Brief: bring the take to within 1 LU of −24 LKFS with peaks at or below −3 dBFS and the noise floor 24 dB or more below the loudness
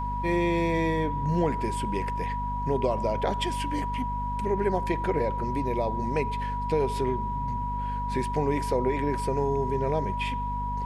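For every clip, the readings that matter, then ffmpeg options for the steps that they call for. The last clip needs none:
mains hum 50 Hz; hum harmonics up to 250 Hz; level of the hum −30 dBFS; interfering tone 970 Hz; level of the tone −30 dBFS; integrated loudness −28.0 LKFS; sample peak −13.0 dBFS; target loudness −24.0 LKFS
→ -af "bandreject=frequency=50:width_type=h:width=6,bandreject=frequency=100:width_type=h:width=6,bandreject=frequency=150:width_type=h:width=6,bandreject=frequency=200:width_type=h:width=6,bandreject=frequency=250:width_type=h:width=6"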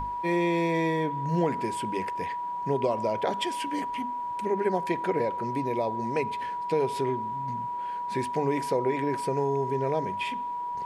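mains hum none found; interfering tone 970 Hz; level of the tone −30 dBFS
→ -af "bandreject=frequency=970:width=30"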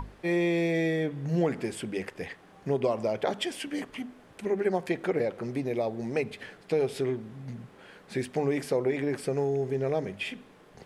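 interfering tone none found; integrated loudness −30.0 LKFS; sample peak −13.5 dBFS; target loudness −24.0 LKFS
→ -af "volume=6dB"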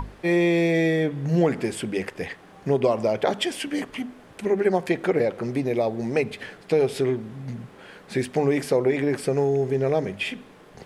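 integrated loudness −24.0 LKFS; sample peak −7.5 dBFS; background noise floor −49 dBFS

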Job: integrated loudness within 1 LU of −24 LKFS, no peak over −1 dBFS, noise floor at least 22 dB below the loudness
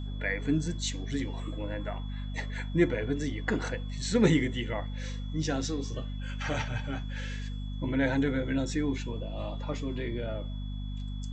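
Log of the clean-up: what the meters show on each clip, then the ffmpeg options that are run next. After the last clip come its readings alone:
mains hum 50 Hz; hum harmonics up to 250 Hz; level of the hum −33 dBFS; interfering tone 3,400 Hz; level of the tone −52 dBFS; integrated loudness −32.0 LKFS; sample peak −10.5 dBFS; target loudness −24.0 LKFS
→ -af "bandreject=frequency=50:width_type=h:width=6,bandreject=frequency=100:width_type=h:width=6,bandreject=frequency=150:width_type=h:width=6,bandreject=frequency=200:width_type=h:width=6,bandreject=frequency=250:width_type=h:width=6"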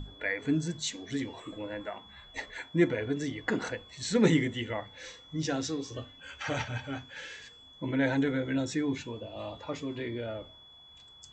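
mains hum none found; interfering tone 3,400 Hz; level of the tone −52 dBFS
→ -af "bandreject=frequency=3400:width=30"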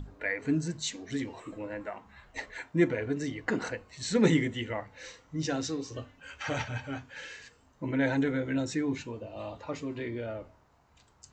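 interfering tone none found; integrated loudness −32.5 LKFS; sample peak −11.0 dBFS; target loudness −24.0 LKFS
→ -af "volume=8.5dB"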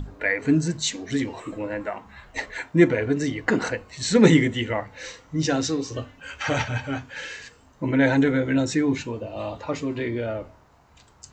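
integrated loudness −24.0 LKFS; sample peak −2.5 dBFS; background noise floor −55 dBFS

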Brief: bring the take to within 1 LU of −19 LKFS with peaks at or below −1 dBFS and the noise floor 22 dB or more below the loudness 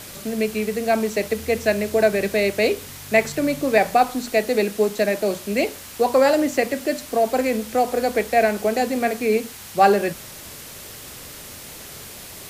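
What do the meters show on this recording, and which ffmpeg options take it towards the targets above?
background noise floor −39 dBFS; target noise floor −43 dBFS; integrated loudness −21.0 LKFS; sample peak −3.5 dBFS; target loudness −19.0 LKFS
→ -af "afftdn=noise_reduction=6:noise_floor=-39"
-af "volume=2dB"

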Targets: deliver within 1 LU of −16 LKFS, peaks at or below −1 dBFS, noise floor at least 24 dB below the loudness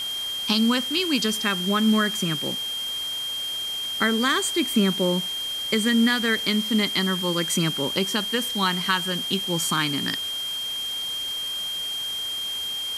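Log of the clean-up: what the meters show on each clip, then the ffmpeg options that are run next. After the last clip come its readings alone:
interfering tone 3,200 Hz; level of the tone −27 dBFS; background noise floor −30 dBFS; target noise floor −48 dBFS; integrated loudness −23.5 LKFS; sample peak −9.5 dBFS; target loudness −16.0 LKFS
→ -af "bandreject=frequency=3200:width=30"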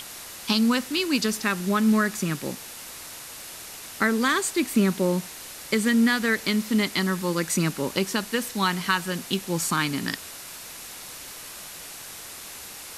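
interfering tone none found; background noise floor −41 dBFS; target noise floor −49 dBFS
→ -af "afftdn=noise_reduction=8:noise_floor=-41"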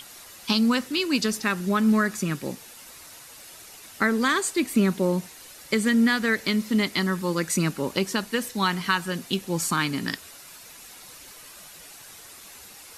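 background noise floor −46 dBFS; target noise floor −49 dBFS
→ -af "afftdn=noise_reduction=6:noise_floor=-46"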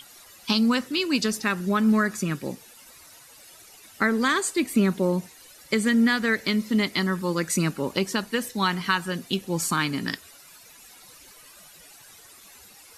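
background noise floor −50 dBFS; integrated loudness −24.5 LKFS; sample peak −10.0 dBFS; target loudness −16.0 LKFS
→ -af "volume=8.5dB"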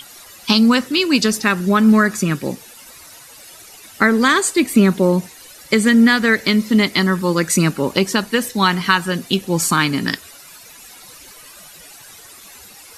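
integrated loudness −16.0 LKFS; sample peak −1.5 dBFS; background noise floor −42 dBFS

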